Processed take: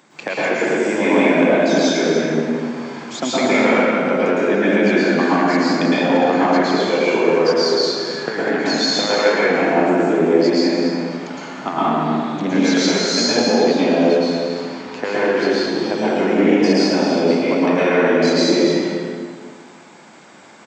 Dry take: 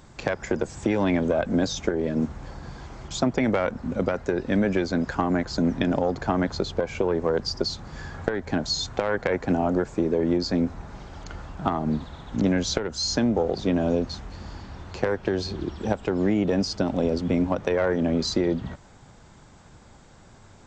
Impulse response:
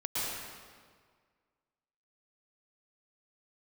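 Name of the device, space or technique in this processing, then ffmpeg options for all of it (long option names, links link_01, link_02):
stadium PA: -filter_complex "[0:a]highpass=frequency=200:width=0.5412,highpass=frequency=200:width=1.3066,equalizer=frequency=2300:width_type=o:width=0.83:gain=6,aecho=1:1:204.1|285.7:0.316|0.282[link_01];[1:a]atrim=start_sample=2205[link_02];[link_01][link_02]afir=irnorm=-1:irlink=0,volume=2.5dB"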